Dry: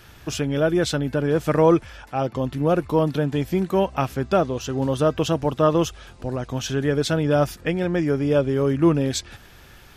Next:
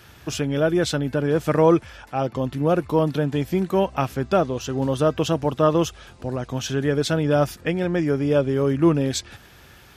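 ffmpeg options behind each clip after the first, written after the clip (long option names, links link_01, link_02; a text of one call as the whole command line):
ffmpeg -i in.wav -af "highpass=56" out.wav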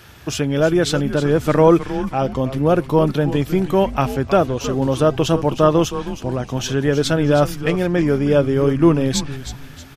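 ffmpeg -i in.wav -filter_complex "[0:a]asplit=5[link_01][link_02][link_03][link_04][link_05];[link_02]adelay=315,afreqshift=-140,volume=-11.5dB[link_06];[link_03]adelay=630,afreqshift=-280,volume=-19.7dB[link_07];[link_04]adelay=945,afreqshift=-420,volume=-27.9dB[link_08];[link_05]adelay=1260,afreqshift=-560,volume=-36dB[link_09];[link_01][link_06][link_07][link_08][link_09]amix=inputs=5:normalize=0,volume=4dB" out.wav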